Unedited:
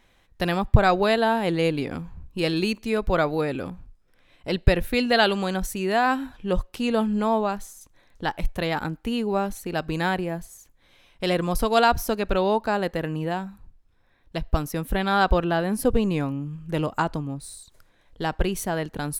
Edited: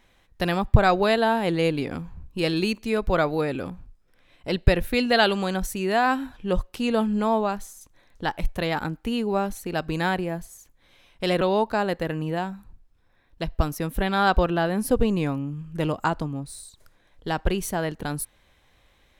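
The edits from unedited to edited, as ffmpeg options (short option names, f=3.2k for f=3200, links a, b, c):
-filter_complex "[0:a]asplit=2[a][b];[a]atrim=end=11.412[c];[b]atrim=start=12.348[d];[c][d]acrossfade=d=0.004:c1=hsin:c2=hsin"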